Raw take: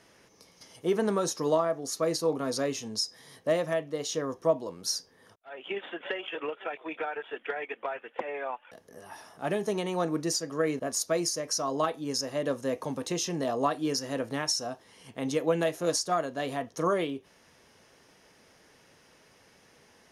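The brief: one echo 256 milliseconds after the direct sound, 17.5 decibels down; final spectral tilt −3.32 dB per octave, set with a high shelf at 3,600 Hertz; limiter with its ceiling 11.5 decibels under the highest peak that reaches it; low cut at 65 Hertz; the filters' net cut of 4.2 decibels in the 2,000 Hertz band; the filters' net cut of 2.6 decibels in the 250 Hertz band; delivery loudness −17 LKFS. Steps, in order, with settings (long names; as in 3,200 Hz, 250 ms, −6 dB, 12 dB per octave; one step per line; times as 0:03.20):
high-pass filter 65 Hz
parametric band 250 Hz −3.5 dB
parametric band 2,000 Hz −7 dB
high-shelf EQ 3,600 Hz +6 dB
brickwall limiter −23.5 dBFS
single-tap delay 256 ms −17.5 dB
level +17 dB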